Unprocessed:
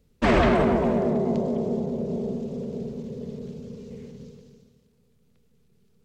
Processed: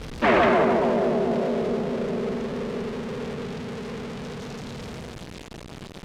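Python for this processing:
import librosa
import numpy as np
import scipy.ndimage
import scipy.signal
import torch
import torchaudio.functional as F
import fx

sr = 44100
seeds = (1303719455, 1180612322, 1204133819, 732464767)

p1 = x + 0.5 * 10.0 ** (-23.0 / 20.0) * np.diff(np.sign(x), prepend=np.sign(x[:1]))
p2 = fx.highpass(p1, sr, hz=470.0, slope=6)
p3 = fx.schmitt(p2, sr, flips_db=-38.5)
p4 = p2 + (p3 * librosa.db_to_amplitude(-8.0))
p5 = scipy.signal.sosfilt(scipy.signal.butter(2, 2900.0, 'lowpass', fs=sr, output='sos'), p4)
y = p5 * librosa.db_to_amplitude(3.5)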